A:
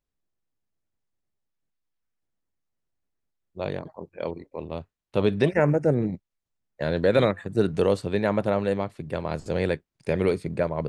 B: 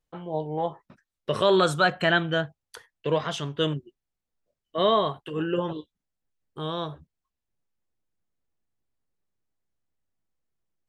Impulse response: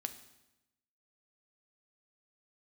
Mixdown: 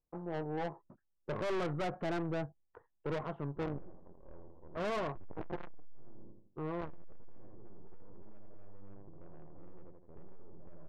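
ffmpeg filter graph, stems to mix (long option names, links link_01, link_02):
-filter_complex "[0:a]aeval=exprs='max(val(0),0)':channel_layout=same,lowshelf=frequency=71:gain=9.5,volume=-5dB,asplit=3[link_01][link_02][link_03];[link_02]volume=-20.5dB[link_04];[link_03]volume=-7dB[link_05];[1:a]volume=-3.5dB,asplit=2[link_06][link_07];[link_07]apad=whole_len=480211[link_08];[link_01][link_08]sidechaingate=range=-33dB:threshold=-55dB:ratio=16:detection=peak[link_09];[2:a]atrim=start_sample=2205[link_10];[link_04][link_10]afir=irnorm=-1:irlink=0[link_11];[link_05]aecho=0:1:81|162|243|324|405:1|0.38|0.144|0.0549|0.0209[link_12];[link_09][link_06][link_11][link_12]amix=inputs=4:normalize=0,lowpass=frequency=1100:width=0.5412,lowpass=frequency=1100:width=1.3066,equalizer=frequency=340:width=5.4:gain=5,aeval=exprs='(tanh(44.7*val(0)+0.55)-tanh(0.55))/44.7':channel_layout=same"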